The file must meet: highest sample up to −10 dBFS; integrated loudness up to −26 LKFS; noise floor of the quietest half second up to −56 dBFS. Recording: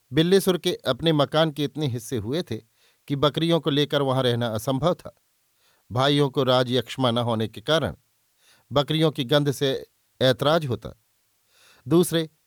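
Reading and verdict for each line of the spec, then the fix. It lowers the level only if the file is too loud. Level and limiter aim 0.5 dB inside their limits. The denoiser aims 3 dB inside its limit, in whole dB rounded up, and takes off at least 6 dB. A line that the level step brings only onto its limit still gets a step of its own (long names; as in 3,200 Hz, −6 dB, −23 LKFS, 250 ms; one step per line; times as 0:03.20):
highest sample −8.0 dBFS: out of spec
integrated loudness −23.0 LKFS: out of spec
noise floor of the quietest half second −68 dBFS: in spec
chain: level −3.5 dB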